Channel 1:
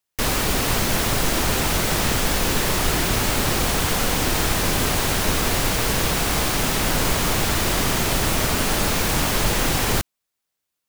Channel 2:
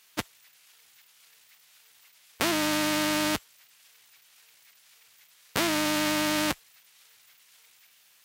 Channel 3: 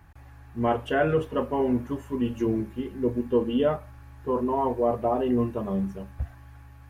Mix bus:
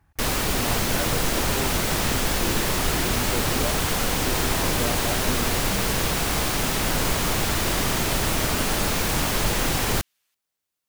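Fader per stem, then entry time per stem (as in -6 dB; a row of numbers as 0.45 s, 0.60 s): -2.5 dB, -14.0 dB, -9.5 dB; 0.00 s, 2.10 s, 0.00 s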